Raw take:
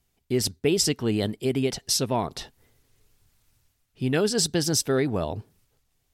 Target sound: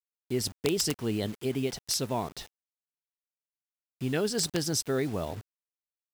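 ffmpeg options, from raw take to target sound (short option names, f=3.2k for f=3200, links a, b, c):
-af "acrusher=bits=6:mix=0:aa=0.000001,aeval=exprs='(mod(3.98*val(0)+1,2)-1)/3.98':c=same,volume=-5.5dB"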